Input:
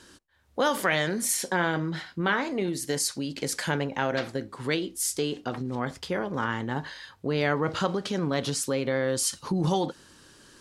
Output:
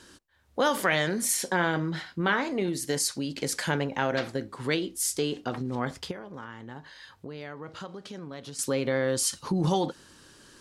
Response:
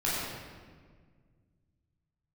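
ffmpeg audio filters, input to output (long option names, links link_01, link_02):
-filter_complex "[0:a]asettb=1/sr,asplit=3[link_01][link_02][link_03];[link_01]atrim=end=6.114[link_04];[link_02]atrim=start=6.11:end=8.59,asetpts=PTS-STARTPTS,afade=type=in:duration=0.004:curve=qsin,afade=type=out:start_time=2.476:duration=0.004:curve=qsin,acompressor=threshold=-44dB:ratio=2.5[link_05];[link_03]atrim=start=8.586[link_06];[link_04][link_05]acrossfade=duration=0.004:curve1=hsin:curve2=qsin[link_07];[link_07][link_06]acrossfade=duration=0.004:curve1=qsin:curve2=hsin"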